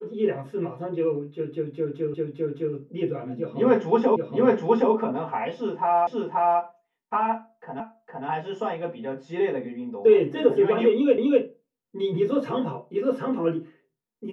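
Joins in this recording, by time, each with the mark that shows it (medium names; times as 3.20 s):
2.14 s: repeat of the last 0.61 s
4.16 s: repeat of the last 0.77 s
6.07 s: repeat of the last 0.53 s
7.80 s: repeat of the last 0.46 s
11.18 s: repeat of the last 0.25 s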